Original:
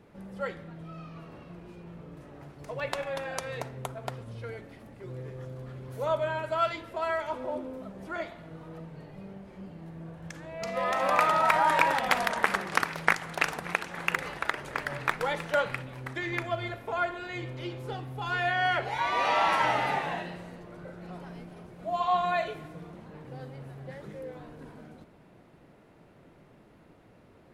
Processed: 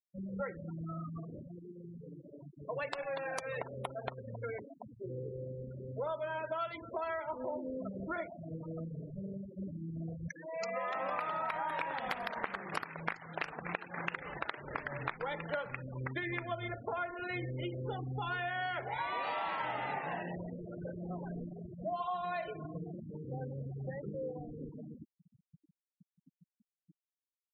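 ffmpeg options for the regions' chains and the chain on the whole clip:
-filter_complex "[0:a]asettb=1/sr,asplit=3[a][b][c];[a]atrim=end=1.474[d];[b]atrim=start=1.47:end=6.61,asetpts=PTS-STARTPTS,afade=t=in:d=0.004:c=qsin,afade=t=out:st=5.136:d=0.004:c=qsin,equalizer=f=99:t=o:w=2.3:g=-7,aecho=1:1:735:0.178,atrim=end_sample=226674[e];[c]atrim=start=6.606[f];[d][e]acrossfade=d=0.004:c1=hsin:c2=qsin[g];[g][f]acrossfade=d=0.004:c1=qsin:c2=hsin,asettb=1/sr,asplit=3[h][i][j];[h]atrim=end=10.284[k];[i]atrim=start=10.28:end=10.95,asetpts=PTS-STARTPTS,afade=t=in:d=0.004:c=qsin,afade=t=out:st=0.666:d=0.004:c=qsin,highpass=f=150:w=0.5412,highpass=f=150:w=1.3066,lowshelf=f=300:g=-10.5,acompressor=mode=upward:threshold=-48dB:ratio=2.5:attack=3.2:release=140:knee=2.83:detection=peak[l];[j]atrim=start=10.946[m];[k][l]acrossfade=d=0.004:c1=hsin:c2=qsin[n];[n][m]acrossfade=d=0.004:c1=qsin:c2=hsin,adynamicequalizer=threshold=0.00224:dfrequency=6000:dqfactor=1.6:tfrequency=6000:tqfactor=1.6:attack=5:release=100:ratio=0.375:range=2:mode=cutabove:tftype=bell,afftfilt=real='re*gte(hypot(re,im),0.0158)':imag='im*gte(hypot(re,im),0.0158)':win_size=1024:overlap=0.75,acompressor=threshold=-38dB:ratio=6,volume=3dB"

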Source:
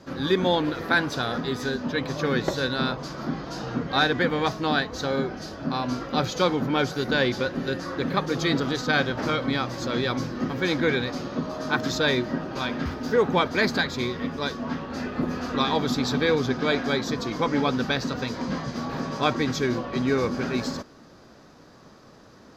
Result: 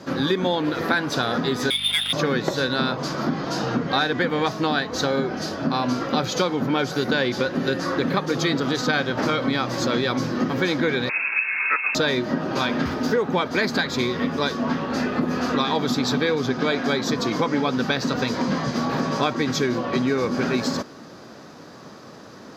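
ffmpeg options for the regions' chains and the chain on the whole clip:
-filter_complex "[0:a]asettb=1/sr,asplit=3[a][b][c];[a]atrim=end=1.704[d];[b]atrim=start=1.7:end=2.13,asetpts=PTS-STARTPTS,afade=t=in:d=0.004:c=qsin,afade=t=out:st=0.426:d=0.004:c=qsin,lowpass=f=3.2k:t=q:w=0.5098,lowpass=f=3.2k:t=q:w=0.6013,lowpass=f=3.2k:t=q:w=0.9,lowpass=f=3.2k:t=q:w=2.563,afreqshift=-3800,aeval=exprs='val(0)+0.00794*(sin(2*PI*50*n/s)+sin(2*PI*2*50*n/s)/2+sin(2*PI*3*50*n/s)/3+sin(2*PI*4*50*n/s)/4+sin(2*PI*5*50*n/s)/5)':c=same,adynamicsmooth=sensitivity=7:basefreq=1.8k[e];[c]atrim=start=2.126[f];[d][e]acrossfade=d=0.004:c1=hsin:c2=qsin[g];[g][f]acrossfade=d=0.004:c1=qsin:c2=hsin,asettb=1/sr,asplit=3[h][i][j];[h]atrim=end=11.094[k];[i]atrim=start=11.09:end=11.95,asetpts=PTS-STARTPTS,afade=t=in:d=0.004:c=qsin,afade=t=out:st=0.856:d=0.004:c=qsin,lowpass=f=2.4k:t=q:w=0.5098,lowpass=f=2.4k:t=q:w=0.6013,lowpass=f=2.4k:t=q:w=0.9,lowpass=f=2.4k:t=q:w=2.563,afreqshift=-2800,highpass=f=130:w=0.5412,highpass=f=130:w=1.3066[l];[j]atrim=start=11.946[m];[k][l]acrossfade=d=0.004:c1=hsin:c2=qsin[n];[n][m]acrossfade=d=0.004:c1=qsin:c2=hsin,acompressor=threshold=-27dB:ratio=6,highpass=120,volume=8.5dB"

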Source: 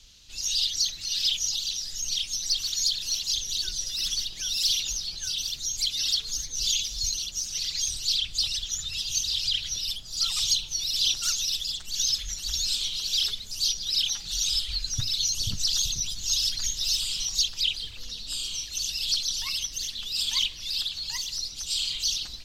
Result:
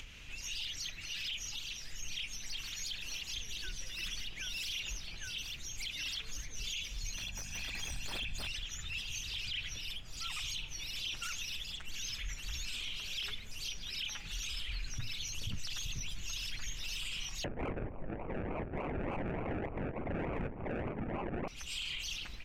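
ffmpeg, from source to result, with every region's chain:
-filter_complex "[0:a]asettb=1/sr,asplit=3[a][b][c];[a]atrim=end=7.154[d];[b]atrim=start=7.15:end=8.47,asetpts=PTS-STARTPTS,afade=t=in:d=0.004:c=qsin,afade=t=out:st=1.316:d=0.004:c=qsin,aecho=1:1:1.2:0.64,atrim=end_sample=58212,aeval=exprs='clip(val(0),-1,0.0562)':c=same,aeval=exprs='val(0)+0.00355*(sin(2*PI*50*n/s)+sin(2*PI*2*50*n/s)/2+sin(2*PI*3*50*n/s)/3+sin(2*PI*4*50*n/s)/4+sin(2*PI*5*50*n/s)/5)':c=same[e];[c]atrim=start=8.466[f];[d][e]acrossfade=d=0.004:c1=hsin:c2=qsin[g];[g][f]acrossfade=d=0.004:c1=qsin:c2=hsin,asettb=1/sr,asplit=3[h][i][j];[h]atrim=end=17.444[k];[i]atrim=start=17.44:end=21.48,asetpts=PTS-STARTPTS,afade=t=in:d=0.004:c=qsin,afade=t=out:st=4.036:d=0.004:c=qsin,acrusher=samples=34:mix=1:aa=0.000001:lfo=1:lforange=20.4:lforate=3.4,adynamicsmooth=sensitivity=1.5:basefreq=720[l];[j]atrim=start=21.476[m];[k][l]acrossfade=d=0.004:c1=hsin:c2=qsin[n];[n][m]acrossfade=d=0.004:c1=qsin:c2=hsin,highshelf=f=3.2k:t=q:w=3:g=-10,alimiter=level_in=4.5dB:limit=-24dB:level=0:latency=1:release=13,volume=-4.5dB,acompressor=mode=upward:threshold=-38dB:ratio=2.5,volume=-2dB"

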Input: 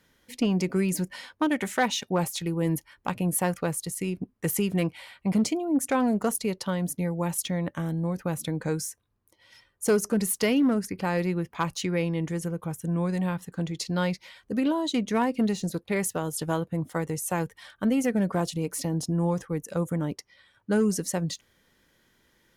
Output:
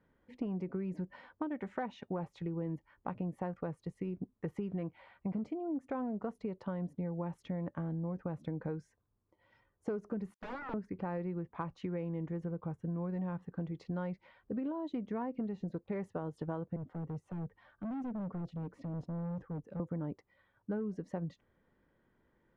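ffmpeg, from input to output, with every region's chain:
-filter_complex "[0:a]asettb=1/sr,asplit=3[a][b][c];[a]atrim=end=10.344[d];[b]atrim=start=10.34:end=10.74,asetpts=PTS-STARTPTS,afade=t=in:d=0.004:c=qsin,afade=t=out:st=0.396:d=0.004:c=qsin,agate=range=-34dB:threshold=-31dB:ratio=16:release=100:detection=peak,lowshelf=f=120:g=6.5,aeval=exprs='0.0355*(abs(mod(val(0)/0.0355+3,4)-2)-1)':c=same[e];[c]atrim=start=10.736[f];[d][e]acrossfade=d=0.004:c1=hsin:c2=qsin[g];[g][f]acrossfade=d=0.004:c1=qsin:c2=hsin,asettb=1/sr,asplit=3[h][i][j];[h]atrim=end=16.764[k];[i]atrim=start=16.76:end=19.8,asetpts=PTS-STARTPTS,afade=t=in:d=0.004:c=qsin,afade=t=out:st=3.036:d=0.004:c=qsin,aemphasis=mode=reproduction:type=cd,acrossover=split=360|3000[l][m][n];[m]acompressor=threshold=-52dB:ratio=2:attack=3.2:release=140:knee=2.83:detection=peak[o];[l][o][n]amix=inputs=3:normalize=0,asoftclip=type=hard:threshold=-32dB[p];[j]atrim=start=19.796[q];[k][p]acrossfade=d=0.004:c1=hsin:c2=qsin[r];[r][q]acrossfade=d=0.004:c1=qsin:c2=hsin,lowpass=1.2k,acompressor=threshold=-30dB:ratio=6,volume=-4.5dB"

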